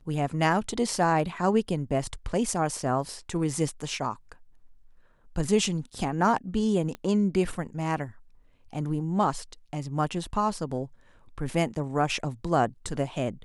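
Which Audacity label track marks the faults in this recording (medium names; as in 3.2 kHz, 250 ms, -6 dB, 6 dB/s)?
6.950000	6.950000	pop -23 dBFS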